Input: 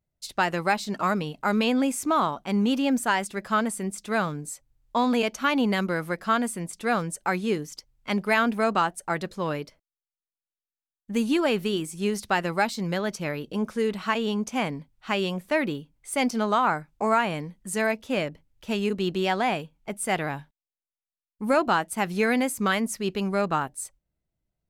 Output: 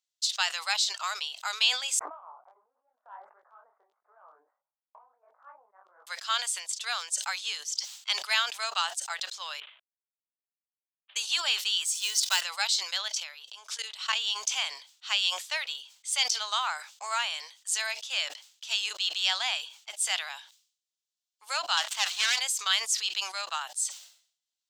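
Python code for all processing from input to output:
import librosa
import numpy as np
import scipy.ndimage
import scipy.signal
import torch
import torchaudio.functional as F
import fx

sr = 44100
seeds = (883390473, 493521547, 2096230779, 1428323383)

y = fx.chain(x, sr, fx.gaussian_blur(sigma=9.8),
    fx.over_compress(threshold_db=-32.0, ratio=-0.5),
    fx.detune_double(cents=51), at=(1.99, 6.07))
y = fx.chain(y, sr, fx.cvsd(bps=16000),
    fx.highpass(hz=290.0, slope=12),
    fx.over_compress(threshold_db=-43.0, ratio=-1.0), at=(9.6, 11.16))
y = fx.chain(y, sr, fx.block_float(bits=5),
    fx.high_shelf(hz=9900.0, db=9.5),
    fx.comb(ms=2.0, depth=0.42), at=(11.85, 12.42))
y = fx.chain(y, sr, fx.transient(attack_db=6, sustain_db=10),
    fx.level_steps(step_db=20), at=(13.08, 14.13))
y = fx.chain(y, sr, fx.median_filter(points=9),
    fx.leveller(passes=2),
    fx.highpass(hz=620.0, slope=12), at=(21.77, 22.39))
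y = scipy.signal.sosfilt(scipy.signal.bessel(6, 1300.0, 'highpass', norm='mag', fs=sr, output='sos'), y)
y = fx.band_shelf(y, sr, hz=4800.0, db=14.0, octaves=1.7)
y = fx.sustainer(y, sr, db_per_s=110.0)
y = y * 10.0 ** (-3.5 / 20.0)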